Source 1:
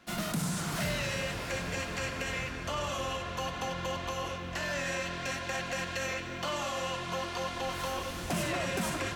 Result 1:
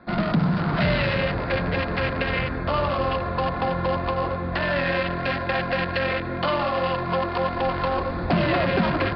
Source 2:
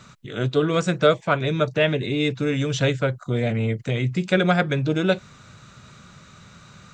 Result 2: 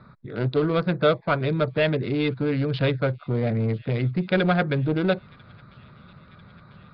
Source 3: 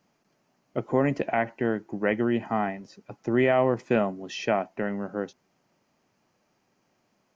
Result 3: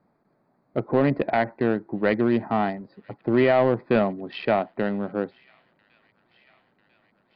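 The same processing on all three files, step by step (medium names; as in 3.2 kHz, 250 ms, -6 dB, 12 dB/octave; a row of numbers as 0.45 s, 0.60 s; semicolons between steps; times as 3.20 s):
local Wiener filter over 15 samples; in parallel at -10 dB: wavefolder -19 dBFS; on the sum: steep low-pass 4.8 kHz 96 dB/octave; feedback echo behind a high-pass 995 ms, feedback 73%, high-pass 2.3 kHz, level -23.5 dB; normalise loudness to -24 LUFS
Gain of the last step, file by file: +10.0 dB, -2.5 dB, +2.0 dB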